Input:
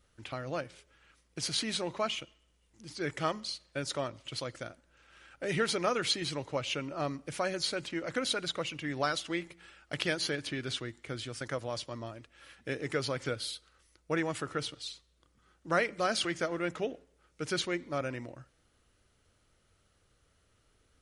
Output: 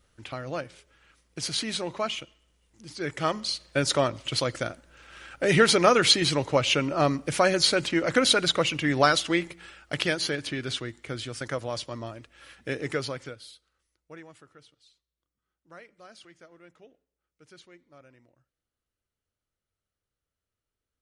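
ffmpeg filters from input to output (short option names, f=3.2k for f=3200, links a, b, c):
-af "volume=11dB,afade=t=in:st=3.15:d=0.63:silence=0.398107,afade=t=out:st=8.98:d=1.2:silence=0.473151,afade=t=out:st=12.87:d=0.48:silence=0.223872,afade=t=out:st=13.35:d=1.22:silence=0.281838"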